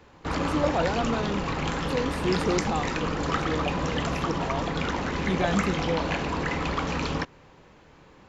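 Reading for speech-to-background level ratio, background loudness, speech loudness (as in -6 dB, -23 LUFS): -3.0 dB, -28.5 LUFS, -31.5 LUFS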